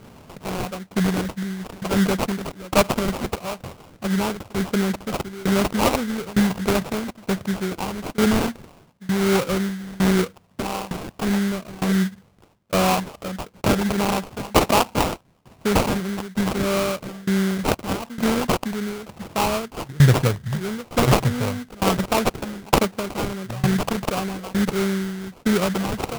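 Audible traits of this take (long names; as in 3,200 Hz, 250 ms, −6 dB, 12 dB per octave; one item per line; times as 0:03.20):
tremolo saw down 1.1 Hz, depth 95%
phaser sweep stages 8, 1.5 Hz, lowest notch 540–2,700 Hz
aliases and images of a low sample rate 1,800 Hz, jitter 20%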